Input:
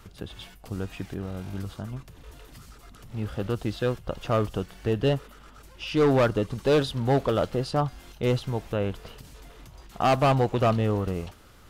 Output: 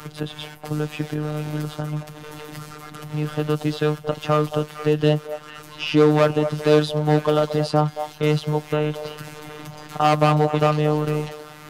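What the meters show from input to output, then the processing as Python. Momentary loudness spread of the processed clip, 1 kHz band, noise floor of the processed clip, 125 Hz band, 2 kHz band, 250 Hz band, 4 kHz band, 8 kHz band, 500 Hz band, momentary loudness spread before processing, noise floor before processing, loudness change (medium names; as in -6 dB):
19 LU, +5.5 dB, -42 dBFS, +5.0 dB, +5.5 dB, +6.0 dB, +6.0 dB, +6.0 dB, +5.5 dB, 16 LU, -50 dBFS, +5.0 dB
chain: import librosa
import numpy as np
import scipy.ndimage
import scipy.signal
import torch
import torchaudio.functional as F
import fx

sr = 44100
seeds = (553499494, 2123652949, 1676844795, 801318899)

y = scipy.signal.sosfilt(scipy.signal.butter(2, 97.0, 'highpass', fs=sr, output='sos'), x)
y = fx.echo_stepped(y, sr, ms=224, hz=710.0, octaves=1.4, feedback_pct=70, wet_db=-8.5)
y = fx.robotise(y, sr, hz=151.0)
y = fx.band_squash(y, sr, depth_pct=40)
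y = y * librosa.db_to_amplitude(8.0)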